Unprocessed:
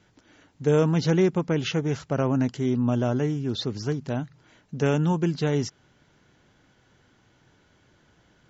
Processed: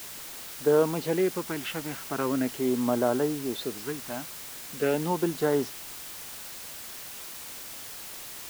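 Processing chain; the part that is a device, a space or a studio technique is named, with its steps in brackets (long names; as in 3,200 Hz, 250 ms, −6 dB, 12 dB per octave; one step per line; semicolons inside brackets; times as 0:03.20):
shortwave radio (band-pass filter 350–2,500 Hz; amplitude tremolo 0.35 Hz, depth 42%; auto-filter notch sine 0.41 Hz 410–2,500 Hz; white noise bed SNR 11 dB)
level +4 dB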